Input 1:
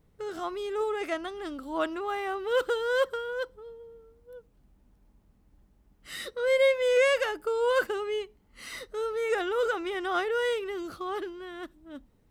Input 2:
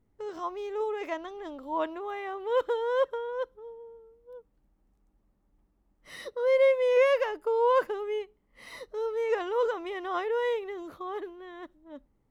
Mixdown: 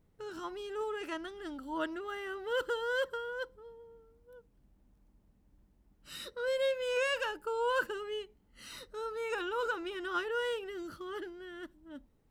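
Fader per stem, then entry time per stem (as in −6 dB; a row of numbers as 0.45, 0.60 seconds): −6.5, −5.0 decibels; 0.00, 0.00 seconds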